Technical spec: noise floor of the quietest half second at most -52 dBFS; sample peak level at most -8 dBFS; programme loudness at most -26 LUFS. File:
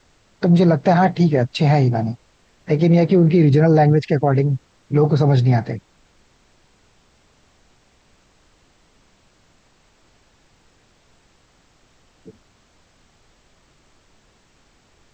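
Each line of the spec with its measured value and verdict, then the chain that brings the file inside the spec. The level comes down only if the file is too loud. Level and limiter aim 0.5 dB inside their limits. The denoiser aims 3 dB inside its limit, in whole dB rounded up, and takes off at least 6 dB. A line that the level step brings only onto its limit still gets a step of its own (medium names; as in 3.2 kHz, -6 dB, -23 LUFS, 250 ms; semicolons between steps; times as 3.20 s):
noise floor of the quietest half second -57 dBFS: pass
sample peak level -5.5 dBFS: fail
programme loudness -16.5 LUFS: fail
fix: trim -10 dB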